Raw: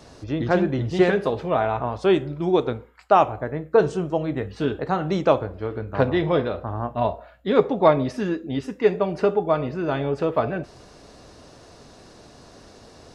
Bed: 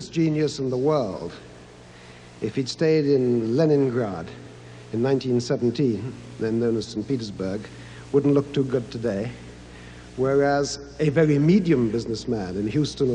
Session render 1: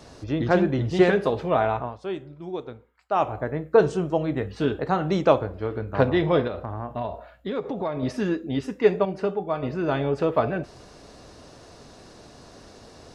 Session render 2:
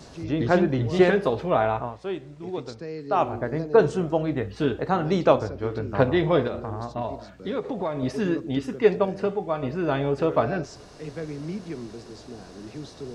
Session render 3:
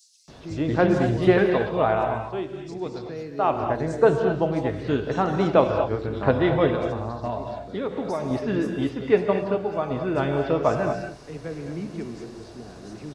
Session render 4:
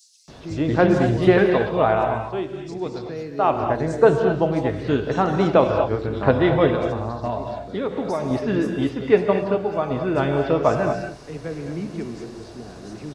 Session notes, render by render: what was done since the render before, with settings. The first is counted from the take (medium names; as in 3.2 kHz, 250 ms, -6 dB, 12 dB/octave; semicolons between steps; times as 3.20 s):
1.70–3.36 s: dip -12.5 dB, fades 0.27 s; 6.47–8.03 s: compression 4:1, threshold -26 dBFS; 9.05–9.63 s: feedback comb 190 Hz, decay 0.18 s
add bed -15.5 dB
bands offset in time highs, lows 280 ms, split 4.8 kHz; gated-style reverb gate 260 ms rising, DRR 5 dB
trim +3 dB; peak limiter -3 dBFS, peak gain reduction 2.5 dB